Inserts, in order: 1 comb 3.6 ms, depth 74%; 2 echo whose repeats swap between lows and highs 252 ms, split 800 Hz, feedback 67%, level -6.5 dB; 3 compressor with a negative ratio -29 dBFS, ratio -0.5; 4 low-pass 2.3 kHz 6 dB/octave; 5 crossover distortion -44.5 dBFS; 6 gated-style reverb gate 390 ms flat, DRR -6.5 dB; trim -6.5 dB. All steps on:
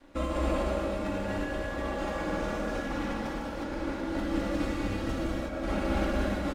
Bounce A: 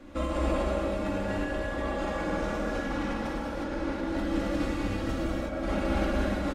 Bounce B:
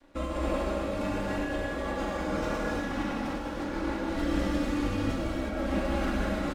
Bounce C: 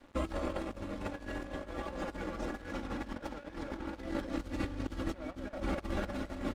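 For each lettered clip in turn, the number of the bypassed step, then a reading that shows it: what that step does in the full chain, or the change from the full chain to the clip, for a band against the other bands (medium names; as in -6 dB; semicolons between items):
5, distortion -17 dB; 2, momentary loudness spread change -1 LU; 6, crest factor change +2.0 dB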